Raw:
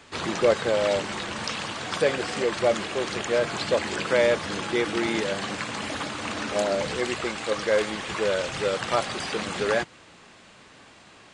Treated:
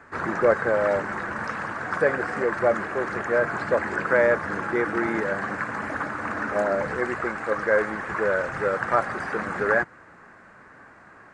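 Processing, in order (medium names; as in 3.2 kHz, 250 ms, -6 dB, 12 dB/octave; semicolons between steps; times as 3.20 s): resonant high shelf 2.3 kHz -12.5 dB, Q 3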